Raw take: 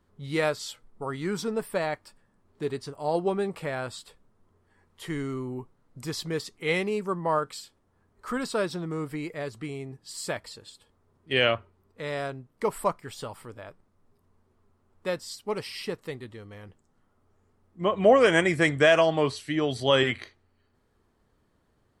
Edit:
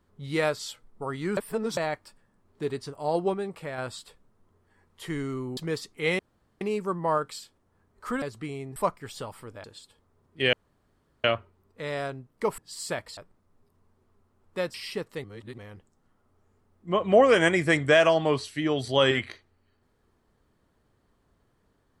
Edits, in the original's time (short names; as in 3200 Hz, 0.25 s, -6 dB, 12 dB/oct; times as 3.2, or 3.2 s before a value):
1.37–1.77 reverse
3.34–3.78 gain -4 dB
5.57–6.2 cut
6.82 insert room tone 0.42 s
8.43–9.42 cut
9.96–10.55 swap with 12.78–13.66
11.44 insert room tone 0.71 s
15.23–15.66 cut
16.16–16.5 reverse